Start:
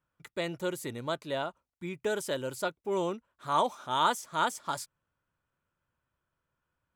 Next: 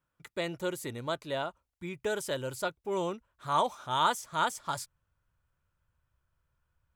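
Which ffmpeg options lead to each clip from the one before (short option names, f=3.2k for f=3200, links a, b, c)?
-af "asubboost=boost=6:cutoff=98"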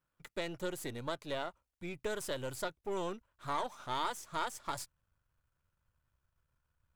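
-af "aeval=exprs='if(lt(val(0),0),0.447*val(0),val(0))':c=same,acompressor=threshold=-33dB:ratio=3"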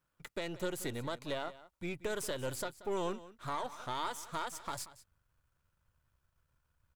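-af "alimiter=level_in=4.5dB:limit=-24dB:level=0:latency=1:release=177,volume=-4.5dB,aecho=1:1:182:0.141,volume=3dB"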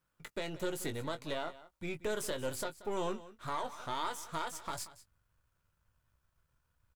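-filter_complex "[0:a]asplit=2[a][b];[b]adelay=19,volume=-9dB[c];[a][c]amix=inputs=2:normalize=0"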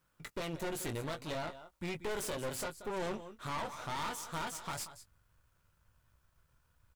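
-af "aeval=exprs='(tanh(158*val(0)+0.75)-tanh(0.75))/158':c=same,volume=10dB"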